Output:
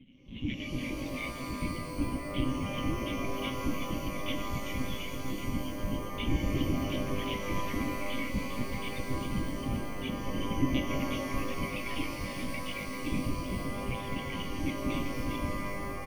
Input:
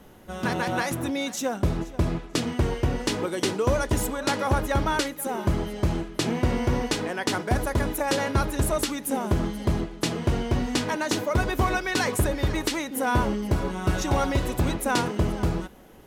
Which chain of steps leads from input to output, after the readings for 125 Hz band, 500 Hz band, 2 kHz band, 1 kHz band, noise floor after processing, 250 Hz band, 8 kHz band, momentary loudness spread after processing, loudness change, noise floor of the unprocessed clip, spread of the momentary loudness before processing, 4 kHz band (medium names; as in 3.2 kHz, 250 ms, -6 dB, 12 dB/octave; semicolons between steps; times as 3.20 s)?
-9.5 dB, -11.0 dB, -8.5 dB, -10.0 dB, -39 dBFS, -6.0 dB, -13.5 dB, 5 LU, -8.5 dB, -43 dBFS, 4 LU, -7.5 dB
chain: reverb removal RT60 1.8 s; FFT band-reject 250–1800 Hz; bass shelf 320 Hz -8.5 dB; in parallel at -0.5 dB: compressor with a negative ratio -35 dBFS; on the sum: cascade formant filter i; whisper effect; tremolo 7.9 Hz, depth 39%; on a send: delay 384 ms -7.5 dB; on the sum: monotone LPC vocoder at 8 kHz 130 Hz; pitch-shifted reverb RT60 3.3 s, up +12 st, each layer -2 dB, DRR 6 dB; trim +6.5 dB